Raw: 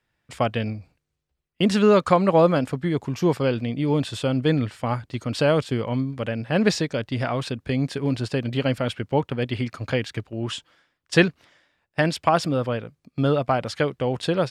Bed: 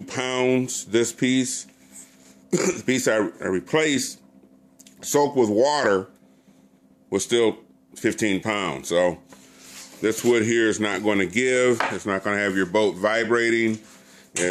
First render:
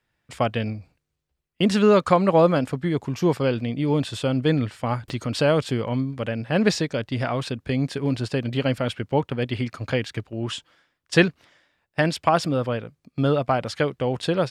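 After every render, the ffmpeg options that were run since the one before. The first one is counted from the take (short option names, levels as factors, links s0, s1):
-filter_complex "[0:a]asettb=1/sr,asplit=3[s0][s1][s2];[s0]atrim=end=5.084[s3];[s1]atrim=start=5.08:end=6.05,asetpts=PTS-STARTPTS,afade=t=in:d=0.004:c=qsin,afade=t=out:st=0.966:d=0.004:c=qsin,acompressor=mode=upward:threshold=0.0708:ratio=2.5:attack=3.2:release=140:knee=2.83:detection=peak[s4];[s2]atrim=start=6.046[s5];[s3][s4]acrossfade=d=0.004:c1=hsin:c2=qsin[s6];[s6][s5]acrossfade=d=0.004:c1=qsin:c2=hsin"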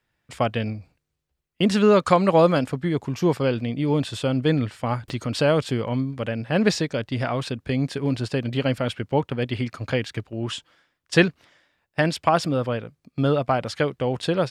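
-filter_complex "[0:a]asettb=1/sr,asplit=3[s0][s1][s2];[s0]atrim=end=2.054[s3];[s1]atrim=start=2.05:end=2.64,asetpts=PTS-STARTPTS,afade=t=in:d=0.004:c=qsin,afade=t=out:st=0.586:d=0.004:c=qsin,equalizer=f=7100:t=o:w=2.9:g=5[s4];[s2]atrim=start=2.636[s5];[s3][s4]acrossfade=d=0.004:c1=hsin:c2=qsin[s6];[s6][s5]acrossfade=d=0.004:c1=qsin:c2=hsin"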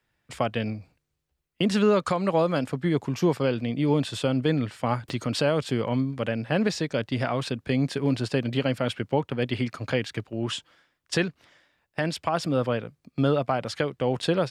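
-filter_complex "[0:a]acrossover=split=100[s0][s1];[s0]acompressor=threshold=0.00316:ratio=6[s2];[s1]alimiter=limit=0.251:level=0:latency=1:release=309[s3];[s2][s3]amix=inputs=2:normalize=0"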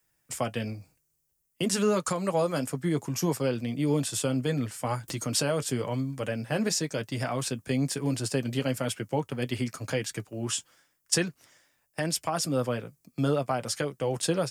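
-filter_complex "[0:a]flanger=delay=6:depth=2:regen=-49:speed=0.99:shape=sinusoidal,acrossover=split=110|3600[s0][s1][s2];[s2]aexciter=amount=7.2:drive=3.4:freq=5300[s3];[s0][s1][s3]amix=inputs=3:normalize=0"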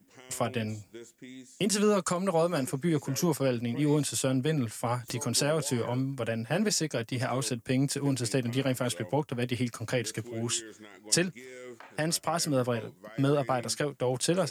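-filter_complex "[1:a]volume=0.0501[s0];[0:a][s0]amix=inputs=2:normalize=0"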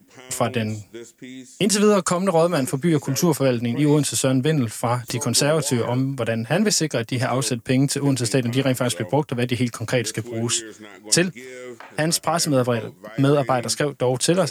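-af "volume=2.66,alimiter=limit=0.708:level=0:latency=1"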